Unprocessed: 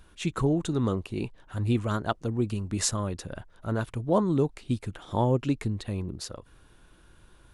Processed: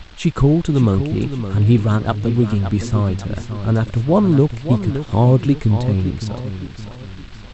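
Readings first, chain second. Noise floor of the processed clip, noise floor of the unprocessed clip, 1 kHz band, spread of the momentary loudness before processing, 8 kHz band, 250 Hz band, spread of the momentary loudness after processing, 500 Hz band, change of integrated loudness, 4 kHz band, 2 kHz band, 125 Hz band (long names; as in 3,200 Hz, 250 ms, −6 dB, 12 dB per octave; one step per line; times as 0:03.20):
−37 dBFS, −57 dBFS, +7.0 dB, 11 LU, can't be measured, +11.5 dB, 14 LU, +9.0 dB, +11.5 dB, +5.0 dB, +7.5 dB, +14.5 dB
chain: de-essing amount 80%
low-shelf EQ 230 Hz +10.5 dB
in parallel at −2.5 dB: downward compressor, threshold −38 dBFS, peak gain reduction 22.5 dB
on the sum: noise in a band 510–4,200 Hz −51 dBFS
dead-zone distortion −48.5 dBFS
linear-phase brick-wall low-pass 8,000 Hz
repeating echo 565 ms, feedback 40%, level −10 dB
level +5.5 dB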